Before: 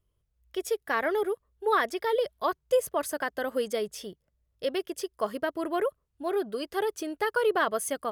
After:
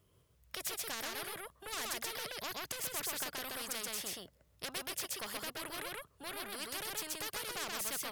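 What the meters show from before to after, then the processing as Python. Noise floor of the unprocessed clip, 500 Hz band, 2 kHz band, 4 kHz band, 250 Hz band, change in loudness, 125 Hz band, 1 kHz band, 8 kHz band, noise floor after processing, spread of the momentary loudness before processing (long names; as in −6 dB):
−77 dBFS, −20.0 dB, −9.5 dB, +0.5 dB, −15.5 dB, −9.5 dB, can't be measured, −14.5 dB, +2.0 dB, −70 dBFS, 8 LU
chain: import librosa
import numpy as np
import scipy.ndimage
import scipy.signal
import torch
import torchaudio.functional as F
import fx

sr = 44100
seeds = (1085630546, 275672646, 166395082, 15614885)

p1 = scipy.signal.sosfilt(scipy.signal.butter(2, 110.0, 'highpass', fs=sr, output='sos'), x)
p2 = 10.0 ** (-24.5 / 20.0) * np.tanh(p1 / 10.0 ** (-24.5 / 20.0))
p3 = p2 + fx.echo_single(p2, sr, ms=128, db=-3.5, dry=0)
p4 = fx.spectral_comp(p3, sr, ratio=4.0)
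y = F.gain(torch.from_numpy(p4), -1.0).numpy()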